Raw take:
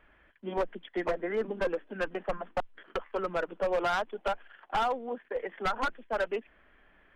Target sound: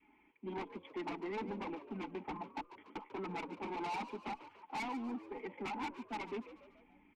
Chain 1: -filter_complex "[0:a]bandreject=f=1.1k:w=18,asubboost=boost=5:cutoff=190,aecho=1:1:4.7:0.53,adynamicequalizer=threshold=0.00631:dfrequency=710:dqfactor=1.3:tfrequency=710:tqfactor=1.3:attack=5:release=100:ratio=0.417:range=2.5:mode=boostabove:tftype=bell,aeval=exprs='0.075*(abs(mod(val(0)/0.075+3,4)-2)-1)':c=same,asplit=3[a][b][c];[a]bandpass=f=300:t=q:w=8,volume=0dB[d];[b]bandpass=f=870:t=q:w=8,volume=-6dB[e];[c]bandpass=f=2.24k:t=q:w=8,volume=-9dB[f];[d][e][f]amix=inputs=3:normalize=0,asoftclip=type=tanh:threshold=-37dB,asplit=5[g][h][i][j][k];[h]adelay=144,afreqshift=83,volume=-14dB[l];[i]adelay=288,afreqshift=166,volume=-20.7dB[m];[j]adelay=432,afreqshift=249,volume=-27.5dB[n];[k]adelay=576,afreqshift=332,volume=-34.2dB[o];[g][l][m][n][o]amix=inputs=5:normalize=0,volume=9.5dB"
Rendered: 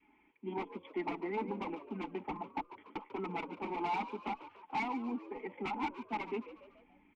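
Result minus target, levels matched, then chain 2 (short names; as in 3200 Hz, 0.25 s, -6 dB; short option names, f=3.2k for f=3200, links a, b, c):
soft clip: distortion -9 dB
-filter_complex "[0:a]bandreject=f=1.1k:w=18,asubboost=boost=5:cutoff=190,aecho=1:1:4.7:0.53,adynamicequalizer=threshold=0.00631:dfrequency=710:dqfactor=1.3:tfrequency=710:tqfactor=1.3:attack=5:release=100:ratio=0.417:range=2.5:mode=boostabove:tftype=bell,aeval=exprs='0.075*(abs(mod(val(0)/0.075+3,4)-2)-1)':c=same,asplit=3[a][b][c];[a]bandpass=f=300:t=q:w=8,volume=0dB[d];[b]bandpass=f=870:t=q:w=8,volume=-6dB[e];[c]bandpass=f=2.24k:t=q:w=8,volume=-9dB[f];[d][e][f]amix=inputs=3:normalize=0,asoftclip=type=tanh:threshold=-46dB,asplit=5[g][h][i][j][k];[h]adelay=144,afreqshift=83,volume=-14dB[l];[i]adelay=288,afreqshift=166,volume=-20.7dB[m];[j]adelay=432,afreqshift=249,volume=-27.5dB[n];[k]adelay=576,afreqshift=332,volume=-34.2dB[o];[g][l][m][n][o]amix=inputs=5:normalize=0,volume=9.5dB"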